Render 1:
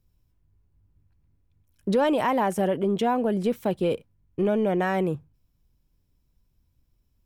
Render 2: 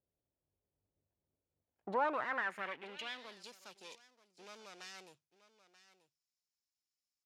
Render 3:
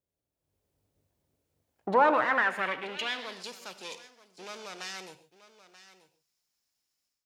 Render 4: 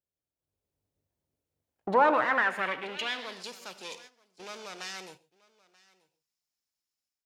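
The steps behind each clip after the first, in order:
minimum comb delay 0.44 ms; echo 0.933 s -15.5 dB; band-pass sweep 580 Hz -> 5700 Hz, 1.59–3.54; gain -2 dB
AGC gain up to 11 dB; non-linear reverb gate 0.17 s flat, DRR 11 dB
gate -51 dBFS, range -8 dB

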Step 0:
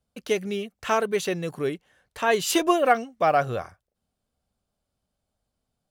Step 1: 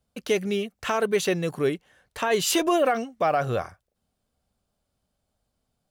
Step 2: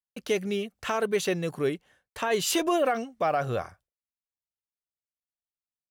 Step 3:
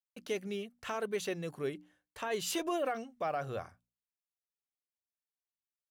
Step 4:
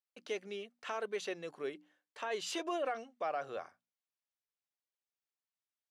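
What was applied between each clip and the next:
limiter -16.5 dBFS, peak gain reduction 10.5 dB; gain +3 dB
expander -49 dBFS; gain -3 dB
notches 60/120/180/240/300 Hz; gain -9 dB
BPF 350–6300 Hz; gain -1.5 dB

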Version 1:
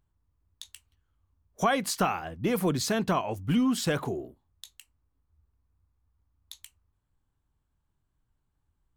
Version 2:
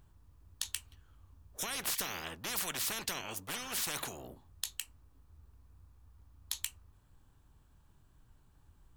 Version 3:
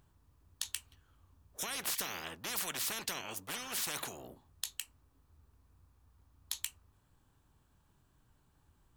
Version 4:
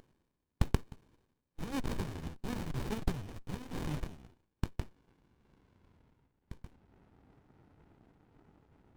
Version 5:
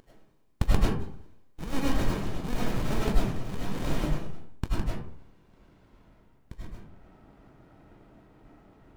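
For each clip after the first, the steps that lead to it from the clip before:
notch 2100 Hz, Q 16; spectral compressor 10:1
low shelf 73 Hz -10 dB; gain -1 dB
reverse; upward compressor, threshold -43 dBFS; reverse; band-pass sweep 4000 Hz -> 560 Hz, 3.63–7.1; running maximum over 65 samples; gain +11.5 dB
digital reverb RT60 0.58 s, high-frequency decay 0.5×, pre-delay 60 ms, DRR -6.5 dB; gain +2.5 dB

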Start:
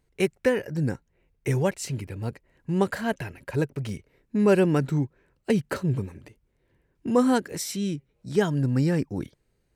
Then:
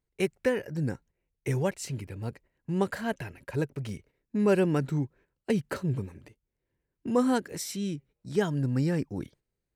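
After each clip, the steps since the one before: gate -50 dBFS, range -10 dB; gain -4 dB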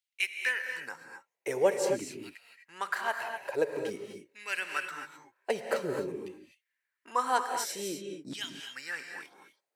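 LFO high-pass saw down 0.48 Hz 280–3100 Hz; non-linear reverb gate 0.28 s rising, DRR 4.5 dB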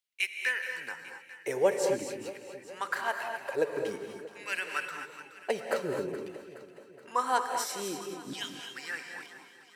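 echo with dull and thin repeats by turns 0.211 s, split 900 Hz, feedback 73%, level -11.5 dB

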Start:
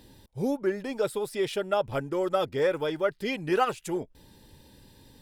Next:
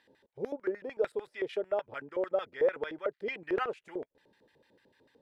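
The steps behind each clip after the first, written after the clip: LFO band-pass square 6.7 Hz 490–1800 Hz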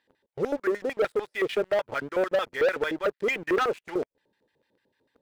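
sample leveller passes 3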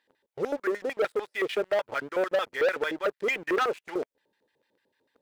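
low shelf 210 Hz -10 dB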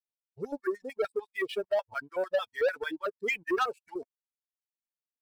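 per-bin expansion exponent 2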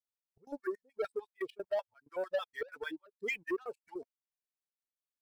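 step gate "xx.x.xxx..xx" 160 bpm -24 dB; gain -5.5 dB

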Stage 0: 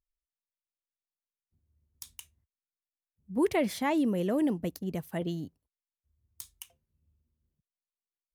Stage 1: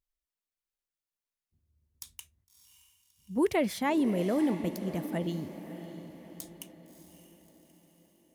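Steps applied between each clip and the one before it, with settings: diffused feedback echo 0.622 s, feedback 48%, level -11.5 dB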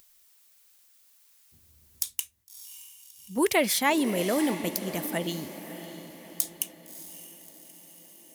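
tilt +3 dB/oct; upward compressor, threshold -51 dBFS; gain +6 dB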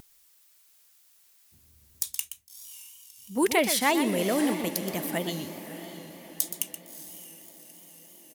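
echo 0.123 s -10 dB; vibrato 3.1 Hz 57 cents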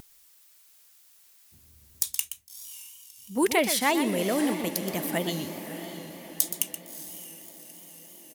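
vocal rider within 3 dB 2 s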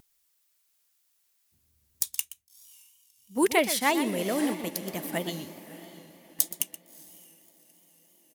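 upward expander 1.5:1, over -48 dBFS; gain +1 dB

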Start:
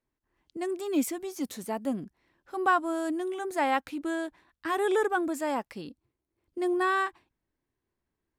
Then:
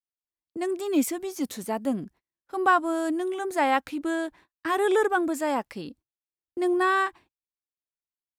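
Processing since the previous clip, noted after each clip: gate -54 dBFS, range -33 dB; gain +3.5 dB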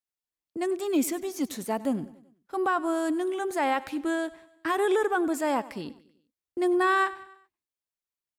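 limiter -16.5 dBFS, peak gain reduction 7 dB; feedback echo 96 ms, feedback 52%, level -19 dB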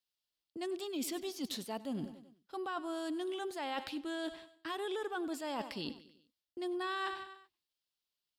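band shelf 3800 Hz +10 dB 1.1 oct; reverse; compressor 5:1, threshold -36 dBFS, peak gain reduction 14.5 dB; reverse; gain -1 dB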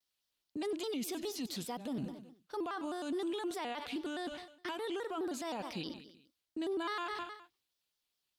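limiter -35.5 dBFS, peak gain reduction 10 dB; shaped vibrato square 4.8 Hz, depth 160 cents; gain +4.5 dB

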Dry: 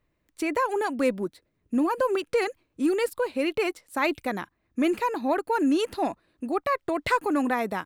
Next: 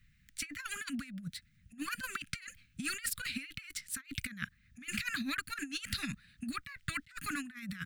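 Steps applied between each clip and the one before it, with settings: inverse Chebyshev band-stop 330–980 Hz, stop band 40 dB; bell 12000 Hz -4.5 dB 0.41 oct; negative-ratio compressor -42 dBFS, ratio -0.5; gain +3 dB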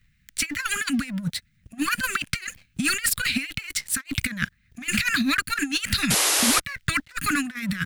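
sample leveller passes 2; painted sound noise, 6.1–6.6, 280–12000 Hz -28 dBFS; gain +7 dB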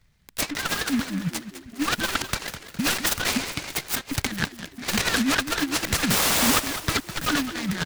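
on a send: frequency-shifting echo 0.205 s, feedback 47%, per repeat +35 Hz, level -11.5 dB; on the sum: noise-modulated delay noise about 1800 Hz, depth 0.083 ms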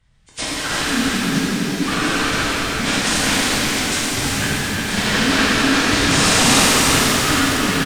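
nonlinear frequency compression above 1900 Hz 1.5:1; echo 0.357 s -5.5 dB; shimmer reverb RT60 3.3 s, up +7 st, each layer -8 dB, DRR -8.5 dB; gain -1.5 dB

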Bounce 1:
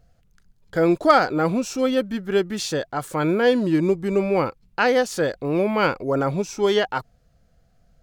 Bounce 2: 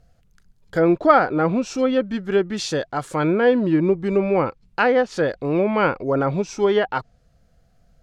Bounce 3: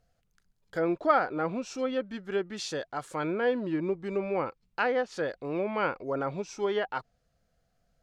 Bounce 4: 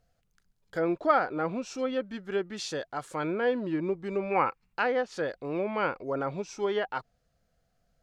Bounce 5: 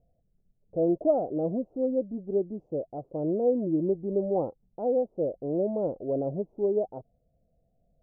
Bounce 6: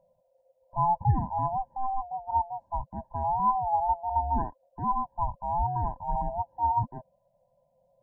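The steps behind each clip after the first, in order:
treble ducked by the level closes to 2200 Hz, closed at -15.5 dBFS; gain +1.5 dB
low shelf 270 Hz -8 dB; gain -8.5 dB
spectral gain 4.31–4.73, 720–2900 Hz +9 dB
elliptic low-pass 660 Hz, stop band 60 dB; gain +4 dB
band-swap scrambler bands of 500 Hz

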